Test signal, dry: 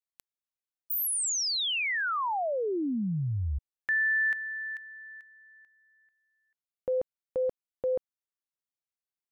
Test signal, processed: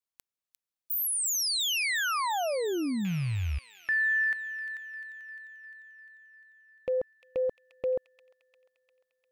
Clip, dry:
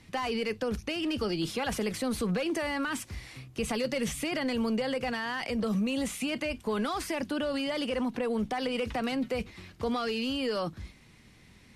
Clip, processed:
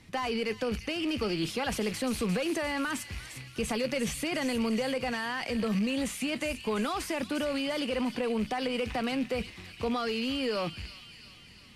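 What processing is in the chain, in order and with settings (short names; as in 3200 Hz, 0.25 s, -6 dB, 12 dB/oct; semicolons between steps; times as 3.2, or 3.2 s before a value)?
rattling part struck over -40 dBFS, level -33 dBFS; thin delay 0.35 s, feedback 60%, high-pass 2500 Hz, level -8 dB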